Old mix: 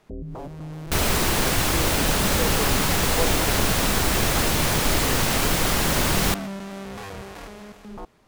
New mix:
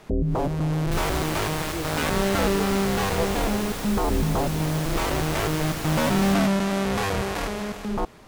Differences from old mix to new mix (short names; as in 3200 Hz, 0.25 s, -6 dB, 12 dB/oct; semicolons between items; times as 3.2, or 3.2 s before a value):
first sound +11.0 dB; second sound -12.0 dB